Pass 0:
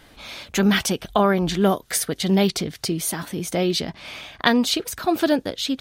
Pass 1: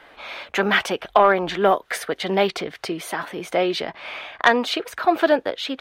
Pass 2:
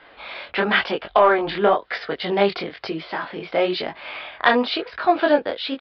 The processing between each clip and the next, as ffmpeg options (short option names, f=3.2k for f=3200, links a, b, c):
-filter_complex "[0:a]acrossover=split=410 2900:gain=0.112 1 0.112[a][b][c];[a][b][c]amix=inputs=3:normalize=0,acontrast=73"
-af "flanger=delay=19:depth=6.1:speed=1,aresample=11025,aresample=44100,volume=3dB"